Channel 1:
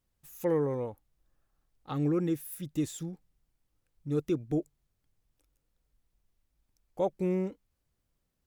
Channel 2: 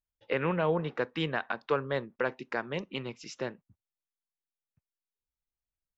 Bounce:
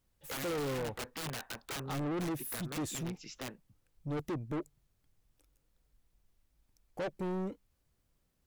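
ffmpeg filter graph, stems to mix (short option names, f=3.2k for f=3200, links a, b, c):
-filter_complex "[0:a]volume=3dB[a];[1:a]adynamicequalizer=threshold=0.00398:dfrequency=140:dqfactor=2.5:tfrequency=140:tqfactor=2.5:attack=5:release=100:ratio=0.375:range=2:mode=boostabove:tftype=bell,aeval=exprs='(mod(25.1*val(0)+1,2)-1)/25.1':c=same,volume=-4dB[b];[a][b]amix=inputs=2:normalize=0,asoftclip=type=tanh:threshold=-33dB"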